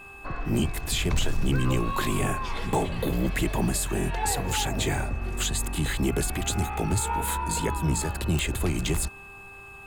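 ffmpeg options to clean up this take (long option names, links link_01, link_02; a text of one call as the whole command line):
ffmpeg -i in.wav -af "adeclick=threshold=4,bandreject=frequency=396.2:width_type=h:width=4,bandreject=frequency=792.4:width_type=h:width=4,bandreject=frequency=1188.6:width_type=h:width=4,bandreject=frequency=1584.8:width_type=h:width=4,bandreject=frequency=2600:width=30" out.wav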